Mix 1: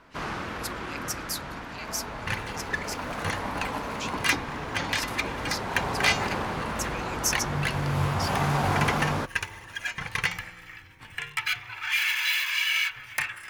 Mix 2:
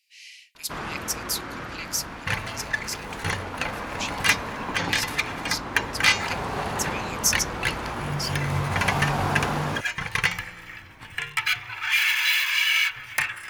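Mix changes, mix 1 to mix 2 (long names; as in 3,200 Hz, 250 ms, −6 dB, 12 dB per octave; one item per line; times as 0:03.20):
speech +5.0 dB
first sound: entry +0.55 s
second sound +4.0 dB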